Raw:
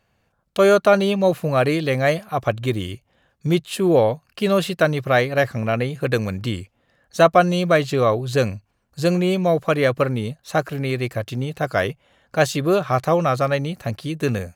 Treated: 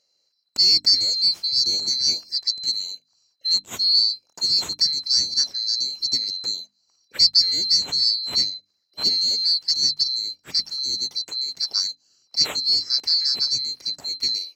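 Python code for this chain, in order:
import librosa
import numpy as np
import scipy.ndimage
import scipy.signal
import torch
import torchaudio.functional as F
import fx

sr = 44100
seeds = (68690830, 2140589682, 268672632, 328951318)

y = fx.band_swap(x, sr, width_hz=4000)
y = scipy.signal.sosfilt(scipy.signal.butter(2, 75.0, 'highpass', fs=sr, output='sos'), y)
y = fx.high_shelf(y, sr, hz=7300.0, db=-11.0)
y = fx.hum_notches(y, sr, base_hz=50, count=6)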